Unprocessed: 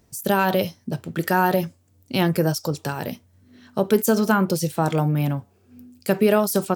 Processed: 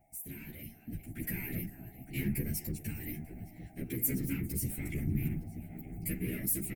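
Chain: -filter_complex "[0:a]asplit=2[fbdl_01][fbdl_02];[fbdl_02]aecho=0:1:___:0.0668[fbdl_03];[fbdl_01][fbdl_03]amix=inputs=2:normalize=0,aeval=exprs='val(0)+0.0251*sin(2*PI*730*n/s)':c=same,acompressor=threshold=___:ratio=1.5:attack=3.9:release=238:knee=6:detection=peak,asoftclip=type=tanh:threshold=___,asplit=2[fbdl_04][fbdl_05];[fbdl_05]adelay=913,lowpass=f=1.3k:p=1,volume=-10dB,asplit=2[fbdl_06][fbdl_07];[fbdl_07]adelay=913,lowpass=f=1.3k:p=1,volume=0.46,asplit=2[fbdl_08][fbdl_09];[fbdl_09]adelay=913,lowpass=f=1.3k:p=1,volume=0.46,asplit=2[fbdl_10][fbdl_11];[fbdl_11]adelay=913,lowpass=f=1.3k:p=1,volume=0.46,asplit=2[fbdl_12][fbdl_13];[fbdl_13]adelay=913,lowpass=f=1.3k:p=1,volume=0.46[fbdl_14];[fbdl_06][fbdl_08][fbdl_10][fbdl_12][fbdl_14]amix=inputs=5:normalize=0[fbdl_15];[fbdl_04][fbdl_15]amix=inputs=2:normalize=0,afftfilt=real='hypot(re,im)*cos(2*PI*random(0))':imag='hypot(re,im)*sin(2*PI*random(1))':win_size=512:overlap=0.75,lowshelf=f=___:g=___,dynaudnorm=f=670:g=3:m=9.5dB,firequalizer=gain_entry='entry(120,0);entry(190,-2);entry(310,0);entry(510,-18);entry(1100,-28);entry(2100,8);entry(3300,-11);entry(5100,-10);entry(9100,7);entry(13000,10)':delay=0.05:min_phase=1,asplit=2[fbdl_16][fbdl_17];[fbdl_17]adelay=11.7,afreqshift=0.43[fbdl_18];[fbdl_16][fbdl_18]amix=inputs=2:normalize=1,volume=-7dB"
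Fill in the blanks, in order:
400, -28dB, -22dB, 110, 6.5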